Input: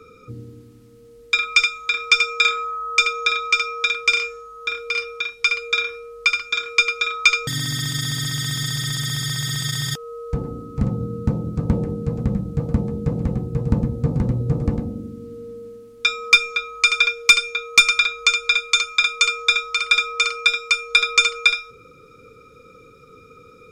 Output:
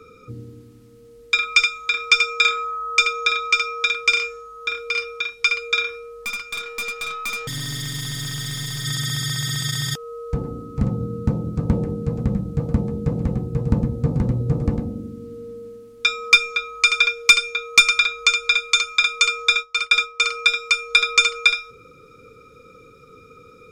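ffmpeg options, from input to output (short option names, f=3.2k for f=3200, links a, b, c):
-filter_complex "[0:a]asplit=3[a][b][c];[a]afade=t=out:st=6.21:d=0.02[d];[b]aeval=exprs='(tanh(15.8*val(0)+0.25)-tanh(0.25))/15.8':c=same,afade=t=in:st=6.21:d=0.02,afade=t=out:st=8.84:d=0.02[e];[c]afade=t=in:st=8.84:d=0.02[f];[d][e][f]amix=inputs=3:normalize=0,asplit=3[g][h][i];[g]afade=t=out:st=19.52:d=0.02[j];[h]agate=range=-33dB:threshold=-23dB:ratio=3:release=100:detection=peak,afade=t=in:st=19.52:d=0.02,afade=t=out:st=20.28:d=0.02[k];[i]afade=t=in:st=20.28:d=0.02[l];[j][k][l]amix=inputs=3:normalize=0"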